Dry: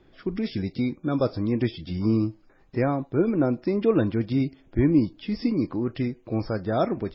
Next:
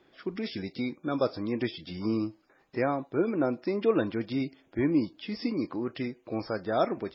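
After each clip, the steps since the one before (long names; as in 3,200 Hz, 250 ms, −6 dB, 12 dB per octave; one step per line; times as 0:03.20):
high-pass filter 460 Hz 6 dB per octave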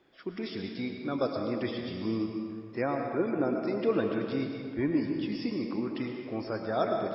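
comb and all-pass reverb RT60 2 s, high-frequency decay 0.7×, pre-delay 70 ms, DRR 2.5 dB
level −3 dB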